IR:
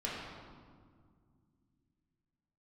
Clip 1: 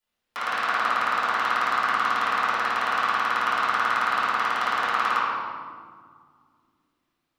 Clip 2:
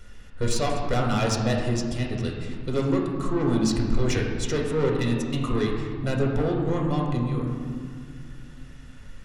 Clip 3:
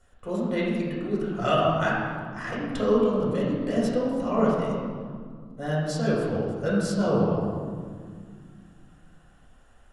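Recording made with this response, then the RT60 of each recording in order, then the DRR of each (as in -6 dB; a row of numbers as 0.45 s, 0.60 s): 3; 2.0 s, 2.0 s, 2.0 s; -15.0 dB, -1.0 dB, -7.0 dB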